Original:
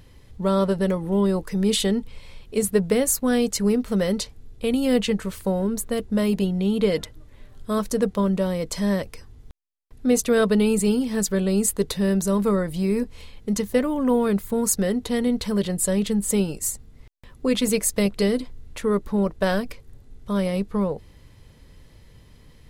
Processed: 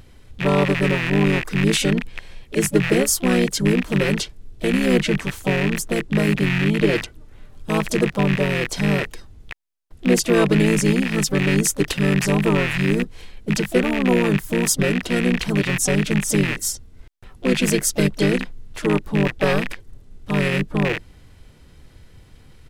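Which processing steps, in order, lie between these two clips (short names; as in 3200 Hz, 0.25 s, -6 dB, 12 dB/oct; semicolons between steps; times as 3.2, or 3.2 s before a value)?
rattling part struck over -37 dBFS, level -15 dBFS; harmoniser -5 st -1 dB, +5 st -17 dB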